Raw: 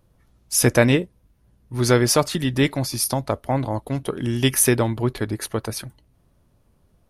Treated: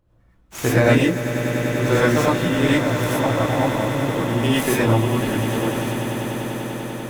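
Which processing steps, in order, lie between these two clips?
running median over 9 samples
on a send: echo that builds up and dies away 98 ms, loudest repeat 8, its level −13 dB
on the sum: reverb whose tail is shaped and stops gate 140 ms rising, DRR −7.5 dB
level −5.5 dB

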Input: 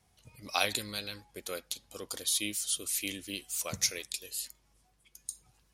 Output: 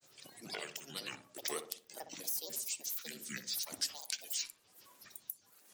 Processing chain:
camcorder AGC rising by 6.4 dB per second
high-pass filter 200 Hz 24 dB per octave
parametric band 9,200 Hz +9.5 dB 1.5 octaves
downward compressor 2 to 1, threshold −53 dBFS, peak gain reduction 19 dB
sample-and-hold tremolo
granular cloud 100 ms, grains 23 per second, spray 22 ms, pitch spread up and down by 12 semitones
feedback echo with a low-pass in the loop 61 ms, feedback 51%, low-pass 1,100 Hz, level −8 dB
level +8 dB

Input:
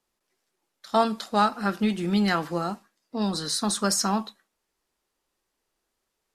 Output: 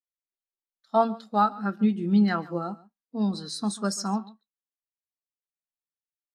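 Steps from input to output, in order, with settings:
speech leveller 2 s
single-tap delay 140 ms −14.5 dB
every bin expanded away from the loudest bin 1.5 to 1

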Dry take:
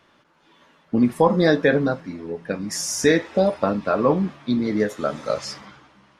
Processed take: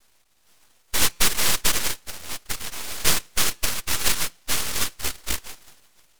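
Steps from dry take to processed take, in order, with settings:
cochlear-implant simulation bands 1
hum removal 171.6 Hz, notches 27
reverb reduction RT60 0.5 s
full-wave rectification
dynamic equaliser 720 Hz, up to −5 dB, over −45 dBFS, Q 2.6

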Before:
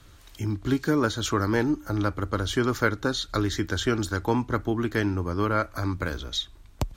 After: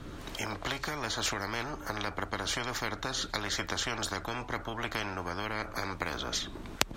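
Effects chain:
camcorder AGC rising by 19 dB per second
spectral tilt −3.5 dB per octave
every bin compressed towards the loudest bin 10 to 1
level −2 dB

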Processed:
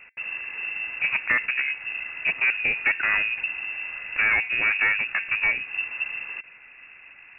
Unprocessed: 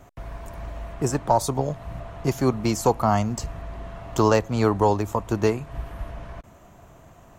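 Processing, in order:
hum removal 223.2 Hz, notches 5
tube saturation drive 19 dB, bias 0.45
voice inversion scrambler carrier 2,700 Hz
level +3 dB

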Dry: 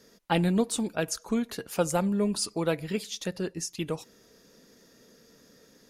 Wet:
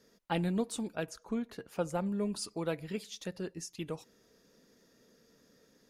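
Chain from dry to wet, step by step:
high-shelf EQ 3,600 Hz −3 dB, from 0:01.06 −11.5 dB, from 0:02.06 −3 dB
level −7 dB

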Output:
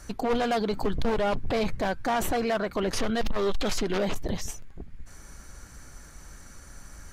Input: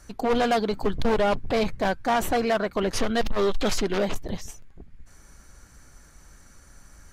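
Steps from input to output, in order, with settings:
brickwall limiter −24.5 dBFS, peak gain reduction 9 dB
level +4.5 dB

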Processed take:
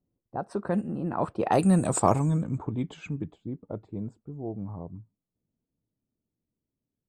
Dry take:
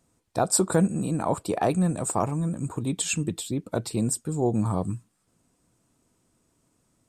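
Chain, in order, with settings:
source passing by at 0:01.97, 25 m/s, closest 11 metres
low-pass that shuts in the quiet parts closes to 450 Hz, open at −22.5 dBFS
level +4 dB

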